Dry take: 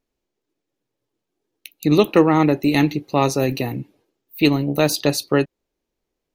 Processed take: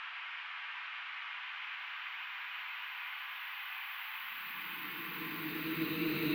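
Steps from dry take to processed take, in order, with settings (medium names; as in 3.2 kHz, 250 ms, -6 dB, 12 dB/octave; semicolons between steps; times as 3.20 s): band noise 930–2900 Hz -35 dBFS; rotary cabinet horn 1.1 Hz; Paulstretch 32×, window 0.25 s, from 4.17 s; trim -7.5 dB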